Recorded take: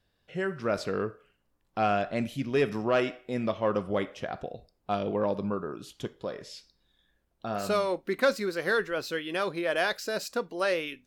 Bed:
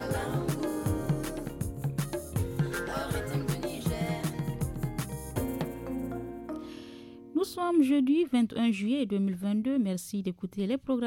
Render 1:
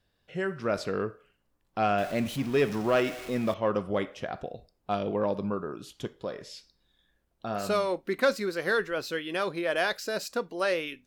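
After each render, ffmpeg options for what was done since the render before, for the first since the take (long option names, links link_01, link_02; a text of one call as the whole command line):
ffmpeg -i in.wav -filter_complex "[0:a]asettb=1/sr,asplit=3[link_01][link_02][link_03];[link_01]atrim=end=1.984[link_04];[link_02]atrim=start=1.98:end=3.54,asetpts=PTS-STARTPTS,afade=type=in:duration=0.004:curve=qsin,afade=type=out:start_time=1.556:duration=0.004:curve=qsin,aeval=exprs='val(0)+0.5*0.015*sgn(val(0))':channel_layout=same[link_05];[link_03]atrim=start=3.536[link_06];[link_04][link_05]acrossfade=duration=0.004:curve1=hsin:curve2=qsin[link_07];[link_07][link_06]acrossfade=duration=0.004:curve1=qsin:curve2=hsin" out.wav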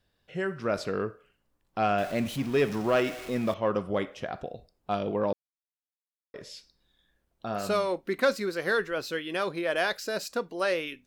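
ffmpeg -i in.wav -filter_complex "[0:a]asplit=3[link_01][link_02][link_03];[link_01]atrim=end=5.33,asetpts=PTS-STARTPTS,afade=type=out:start_time=5.326:duration=0.004:curve=hsin[link_04];[link_02]atrim=start=5.33:end=6.34,asetpts=PTS-STARTPTS,volume=0[link_05];[link_03]atrim=start=6.34,asetpts=PTS-STARTPTS,afade=type=in:duration=0.004:curve=hsin[link_06];[link_04][link_05][link_06]concat=n=3:v=0:a=1" out.wav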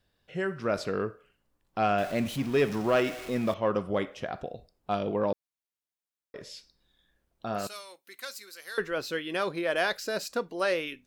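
ffmpeg -i in.wav -filter_complex "[0:a]asettb=1/sr,asplit=3[link_01][link_02][link_03];[link_01]atrim=end=7.674[link_04];[link_02]atrim=start=7.67:end=8.78,asetpts=PTS-STARTPTS,afade=type=in:duration=0.004:curve=qsin,afade=type=out:start_time=1.106:duration=0.004:curve=qsin,aderivative[link_05];[link_03]atrim=start=8.776[link_06];[link_04][link_05]acrossfade=duration=0.004:curve1=hsin:curve2=qsin[link_07];[link_07][link_06]acrossfade=duration=0.004:curve1=qsin:curve2=hsin" out.wav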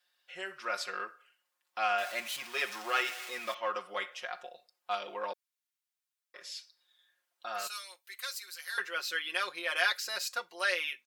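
ffmpeg -i in.wav -af "highpass=1200,aecho=1:1:5.6:0.9" out.wav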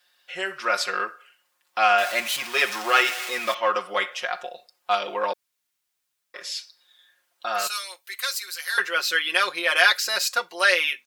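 ffmpeg -i in.wav -af "volume=11.5dB,alimiter=limit=-2dB:level=0:latency=1" out.wav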